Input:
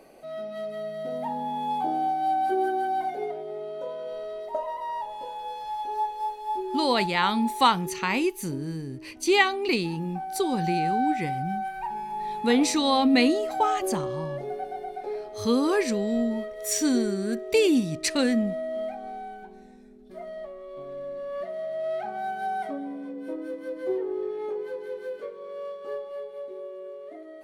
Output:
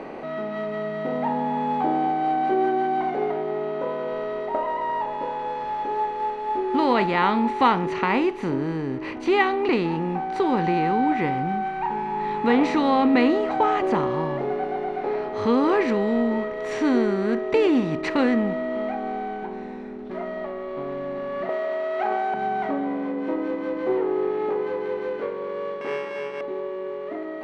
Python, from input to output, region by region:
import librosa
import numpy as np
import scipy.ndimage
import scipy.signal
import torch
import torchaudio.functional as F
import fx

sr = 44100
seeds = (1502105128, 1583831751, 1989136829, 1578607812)

y = fx.chain(x, sr, fx.highpass(hz=370.0, slope=24),
    fx.peak_eq(hz=8600.0, db=4.5, octaves=1.1),
    fx.env_flatten(amount_pct=100), at=(21.49, 22.34))
y = fx.chain(y, sr, fx.sample_sort(block=16),
    fx.highpass(hz=100.0, slope=24),
    fx.high_shelf(hz=8500.0, db=-3.5), at=(25.81, 26.41))
y = fx.bin_compress(y, sr, power=0.6)
y = scipy.signal.sosfilt(scipy.signal.butter(2, 2000.0, 'lowpass', fs=sr, output='sos'), y)